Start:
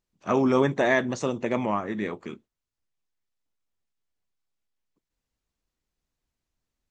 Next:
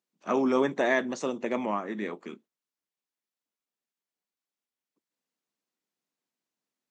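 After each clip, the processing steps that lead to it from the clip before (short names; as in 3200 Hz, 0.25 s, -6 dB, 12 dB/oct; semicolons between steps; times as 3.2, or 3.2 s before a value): HPF 190 Hz 24 dB/oct; gain -3 dB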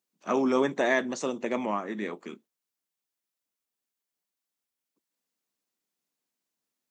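high shelf 6200 Hz +7 dB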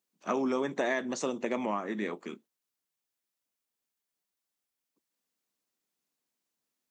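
compressor, threshold -26 dBFS, peak gain reduction 7 dB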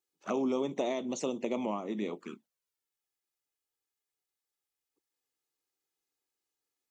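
envelope flanger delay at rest 2.4 ms, full sweep at -30.5 dBFS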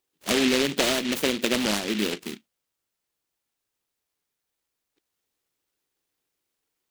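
noise-modulated delay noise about 2700 Hz, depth 0.25 ms; gain +8.5 dB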